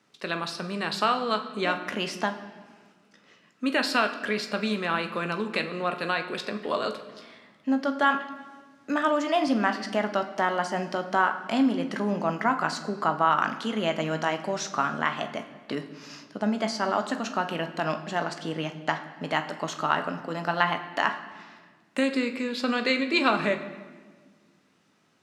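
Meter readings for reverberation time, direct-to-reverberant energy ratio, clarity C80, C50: 1.5 s, 6.5 dB, 13.0 dB, 11.0 dB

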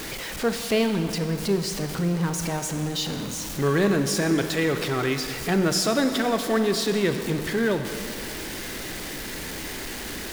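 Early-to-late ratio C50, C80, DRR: 7.5 dB, 8.5 dB, 7.0 dB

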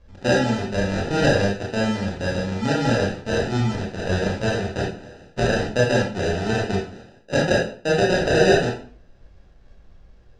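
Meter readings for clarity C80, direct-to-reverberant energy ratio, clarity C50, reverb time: 9.5 dB, -3.5 dB, 4.0 dB, 0.50 s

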